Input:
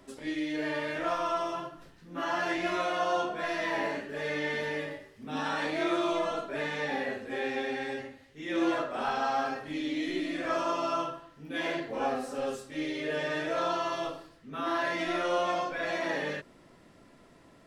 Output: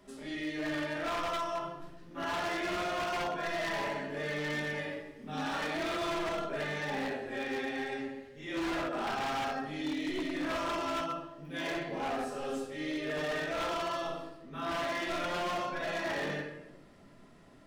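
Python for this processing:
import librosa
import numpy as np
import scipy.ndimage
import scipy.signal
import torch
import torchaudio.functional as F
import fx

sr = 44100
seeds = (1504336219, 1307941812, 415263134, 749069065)

y = fx.room_shoebox(x, sr, seeds[0], volume_m3=350.0, walls='mixed', distance_m=1.3)
y = 10.0 ** (-23.5 / 20.0) * (np.abs((y / 10.0 ** (-23.5 / 20.0) + 3.0) % 4.0 - 2.0) - 1.0)
y = y * 10.0 ** (-5.0 / 20.0)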